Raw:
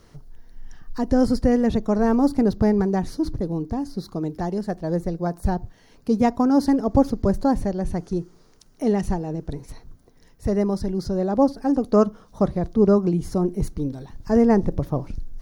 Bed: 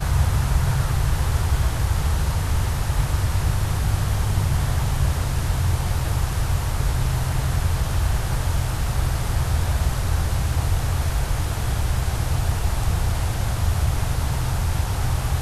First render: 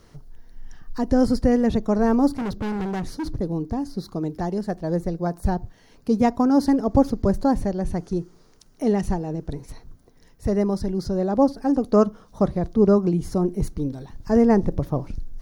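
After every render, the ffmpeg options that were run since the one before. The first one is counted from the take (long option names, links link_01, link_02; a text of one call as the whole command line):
ffmpeg -i in.wav -filter_complex "[0:a]asettb=1/sr,asplit=3[link_01][link_02][link_03];[link_01]atrim=end=2.384[link_04];[link_02]atrim=start=2.38:end=3.33,asetpts=PTS-STARTPTS,afade=type=in:duration=0.004:curve=qsin,afade=type=out:start_time=0.946:duration=0.004:curve=qsin,asoftclip=type=hard:threshold=-24.5dB[link_05];[link_03]atrim=start=3.326[link_06];[link_04][link_05]acrossfade=duration=0.004:curve1=hsin:curve2=qsin[link_07];[link_07][link_06]acrossfade=duration=0.004:curve1=qsin:curve2=hsin" out.wav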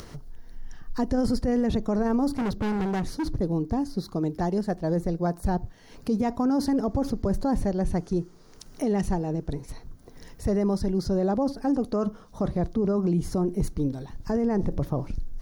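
ffmpeg -i in.wav -af "acompressor=mode=upward:threshold=-34dB:ratio=2.5,alimiter=limit=-17.5dB:level=0:latency=1:release=12" out.wav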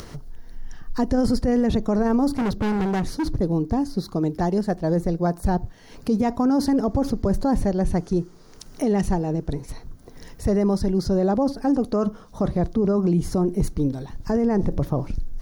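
ffmpeg -i in.wav -af "volume=4dB" out.wav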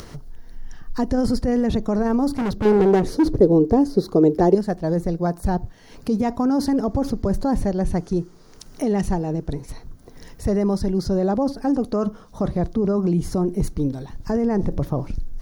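ffmpeg -i in.wav -filter_complex "[0:a]asettb=1/sr,asplit=3[link_01][link_02][link_03];[link_01]atrim=end=2.654[link_04];[link_02]atrim=start=2.65:end=4.55,asetpts=PTS-STARTPTS,afade=type=in:duration=0.004:curve=qsin,afade=type=out:start_time=1.896:duration=0.004:curve=qsin,equalizer=frequency=430:width=1.3:gain=14[link_05];[link_03]atrim=start=4.546[link_06];[link_04][link_05]acrossfade=duration=0.004:curve1=hsin:curve2=qsin[link_07];[link_07][link_06]acrossfade=duration=0.004:curve1=qsin:curve2=hsin" out.wav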